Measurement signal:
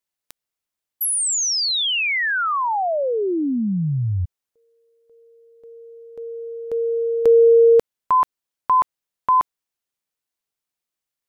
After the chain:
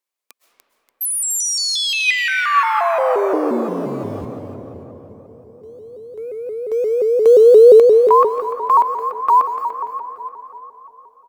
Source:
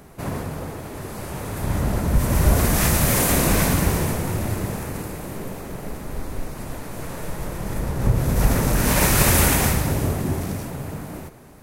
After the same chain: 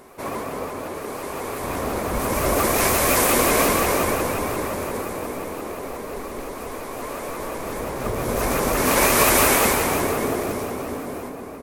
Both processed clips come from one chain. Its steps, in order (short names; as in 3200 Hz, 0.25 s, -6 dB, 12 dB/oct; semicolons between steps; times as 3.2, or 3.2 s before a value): in parallel at -7.5 dB: short-mantissa float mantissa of 2-bit; on the sum: resonant low shelf 300 Hz -12 dB, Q 1.5; small resonant body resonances 240/1100/2300 Hz, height 10 dB, ringing for 40 ms; on a send: feedback echo 0.292 s, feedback 41%, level -9 dB; on the sum: digital reverb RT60 4.1 s, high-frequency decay 0.3×, pre-delay 90 ms, DRR 5 dB; shaped vibrato saw up 5.7 Hz, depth 160 cents; gain -3 dB